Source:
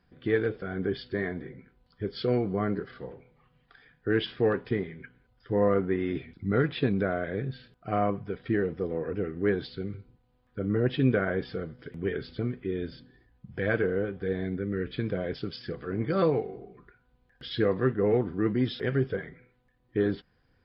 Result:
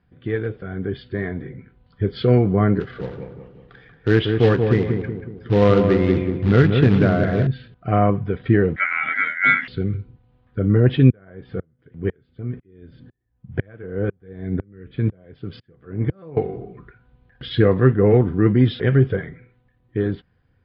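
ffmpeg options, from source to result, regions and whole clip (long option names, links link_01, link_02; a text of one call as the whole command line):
ffmpeg -i in.wav -filter_complex "[0:a]asettb=1/sr,asplit=3[link_01][link_02][link_03];[link_01]atrim=end=2.804[link_04];[link_02]atrim=start=2.8:end=7.47,asetpts=PTS-STARTPTS,afade=type=in:duration=0.004:curve=qsin,afade=type=out:start_time=4.666:duration=0.004:curve=qsin,acrusher=bits=3:mode=log:mix=0:aa=0.000001,asplit=2[link_05][link_06];[link_06]adelay=185,lowpass=frequency=1200:poles=1,volume=-4.5dB,asplit=2[link_07][link_08];[link_08]adelay=185,lowpass=frequency=1200:poles=1,volume=0.49,asplit=2[link_09][link_10];[link_10]adelay=185,lowpass=frequency=1200:poles=1,volume=0.49,asplit=2[link_11][link_12];[link_12]adelay=185,lowpass=frequency=1200:poles=1,volume=0.49,asplit=2[link_13][link_14];[link_14]adelay=185,lowpass=frequency=1200:poles=1,volume=0.49,asplit=2[link_15][link_16];[link_16]adelay=185,lowpass=frequency=1200:poles=1,volume=0.49[link_17];[link_05][link_07][link_09][link_11][link_13][link_15][link_17]amix=inputs=7:normalize=0,atrim=end_sample=205947[link_18];[link_03]atrim=start=7.466[link_19];[link_04][link_18]acrossfade=duration=0.004:curve1=hsin:curve2=qsin[link_20];[link_20][link_19]acrossfade=duration=0.004:curve1=qsin:curve2=hsin,asettb=1/sr,asplit=3[link_21][link_22][link_23];[link_21]atrim=end=8.764[link_24];[link_22]atrim=start=8.76:end=9.68,asetpts=PTS-STARTPTS,afade=type=in:duration=0.004:curve=qsin,afade=type=out:start_time=0.916:duration=0.004:curve=qsin,aeval=exprs='val(0)*sin(2*PI*1800*n/s)':channel_layout=same,highpass=frequency=150:width=0.5412,highpass=frequency=150:width=1.3066,equalizer=frequency=250:width_type=q:width=4:gain=8,equalizer=frequency=400:width_type=q:width=4:gain=-5,equalizer=frequency=710:width_type=q:width=4:gain=9,equalizer=frequency=2000:width_type=q:width=4:gain=6,lowpass=frequency=3400:width=0.5412,lowpass=frequency=3400:width=1.3066,asplit=2[link_25][link_26];[link_26]adelay=15,volume=-6.5dB[link_27];[link_25][link_27]amix=inputs=2:normalize=0,atrim=end_sample=40572[link_28];[link_23]atrim=start=9.676[link_29];[link_24][link_28]acrossfade=duration=0.004:curve1=hsin:curve2=qsin[link_30];[link_30][link_29]acrossfade=duration=0.004:curve1=qsin:curve2=hsin,asettb=1/sr,asplit=3[link_31][link_32][link_33];[link_31]atrim=end=11.104[link_34];[link_32]atrim=start=11.1:end=16.37,asetpts=PTS-STARTPTS,afade=type=in:duration=0.004:curve=qsin,afade=type=out:start_time=5.266:duration=0.004:curve=qsin,highshelf=frequency=3600:gain=-10.5,aeval=exprs='val(0)*pow(10,-39*if(lt(mod(-2*n/s,1),2*abs(-2)/1000),1-mod(-2*n/s,1)/(2*abs(-2)/1000),(mod(-2*n/s,1)-2*abs(-2)/1000)/(1-2*abs(-2)/1000))/20)':channel_layout=same[link_35];[link_33]atrim=start=16.366[link_36];[link_34][link_35]acrossfade=duration=0.004:curve1=hsin:curve2=qsin[link_37];[link_37][link_36]acrossfade=duration=0.004:curve1=qsin:curve2=hsin,lowpass=frequency=3800:width=0.5412,lowpass=frequency=3800:width=1.3066,equalizer=frequency=100:width_type=o:width=1.6:gain=8.5,dynaudnorm=framelen=290:gausssize=11:maxgain=11dB" out.wav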